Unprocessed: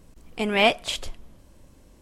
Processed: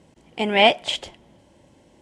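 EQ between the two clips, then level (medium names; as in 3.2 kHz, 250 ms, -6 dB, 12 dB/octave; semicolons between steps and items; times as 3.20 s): cabinet simulation 120–9400 Hz, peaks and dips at 350 Hz +4 dB, 580 Hz +5 dB, 840 Hz +9 dB, 2 kHz +6 dB, 3.1 kHz +7 dB; bass shelf 280 Hz +4.5 dB; band-stop 1.2 kHz, Q 10; -1.5 dB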